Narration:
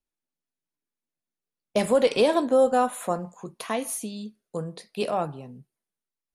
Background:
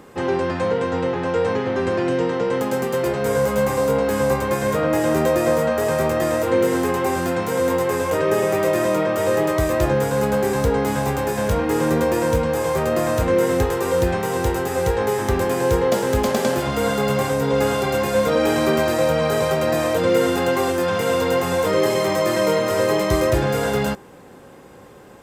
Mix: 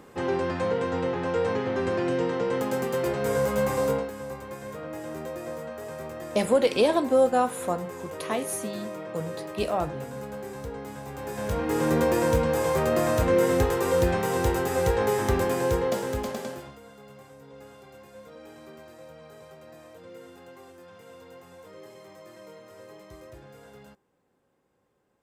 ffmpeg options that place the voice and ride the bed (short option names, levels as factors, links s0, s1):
-filter_complex "[0:a]adelay=4600,volume=0.891[s0];[1:a]volume=2.66,afade=t=out:st=3.9:d=0.21:silence=0.251189,afade=t=in:st=11.09:d=0.93:silence=0.199526,afade=t=out:st=15.27:d=1.53:silence=0.0562341[s1];[s0][s1]amix=inputs=2:normalize=0"